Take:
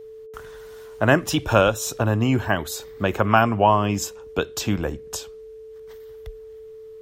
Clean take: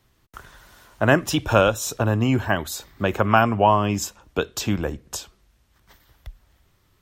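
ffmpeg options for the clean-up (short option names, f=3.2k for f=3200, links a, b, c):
-af "bandreject=f=440:w=30"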